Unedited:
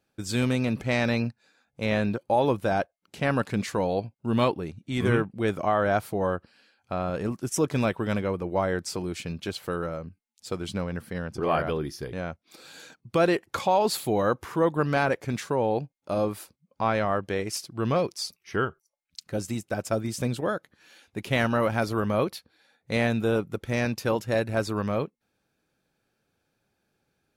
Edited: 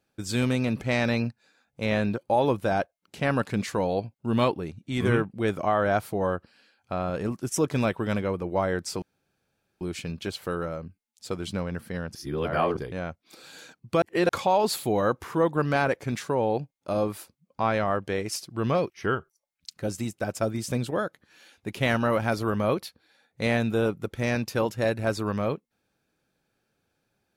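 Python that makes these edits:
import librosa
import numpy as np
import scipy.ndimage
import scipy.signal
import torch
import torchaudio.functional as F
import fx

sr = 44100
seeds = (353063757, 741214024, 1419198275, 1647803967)

y = fx.edit(x, sr, fx.insert_room_tone(at_s=9.02, length_s=0.79),
    fx.reverse_span(start_s=11.36, length_s=0.64),
    fx.reverse_span(start_s=13.23, length_s=0.27),
    fx.cut(start_s=18.11, length_s=0.29), tone=tone)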